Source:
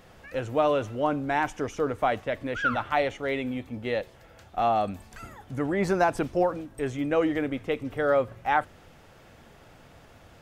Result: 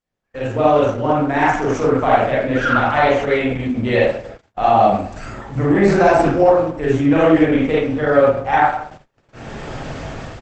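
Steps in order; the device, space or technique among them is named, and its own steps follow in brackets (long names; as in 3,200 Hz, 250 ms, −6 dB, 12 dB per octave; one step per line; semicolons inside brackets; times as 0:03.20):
speakerphone in a meeting room (convolution reverb RT60 0.60 s, pre-delay 35 ms, DRR −6.5 dB; far-end echo of a speakerphone 100 ms, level −16 dB; automatic gain control gain up to 16.5 dB; noise gate −34 dBFS, range −35 dB; level −1 dB; Opus 12 kbit/s 48,000 Hz)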